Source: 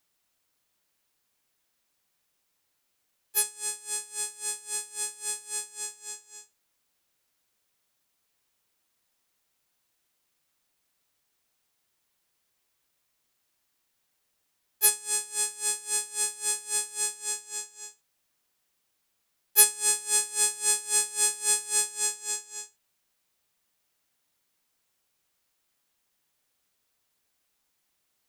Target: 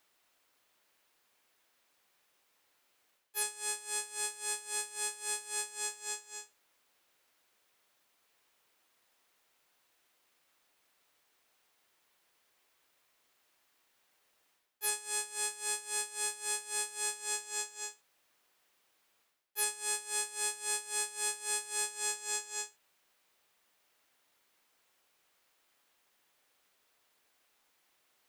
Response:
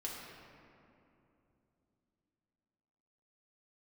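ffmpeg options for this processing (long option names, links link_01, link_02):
-af "areverse,acompressor=threshold=-33dB:ratio=5,areverse,bass=frequency=250:gain=-11,treble=frequency=4000:gain=-7,volume=7dB"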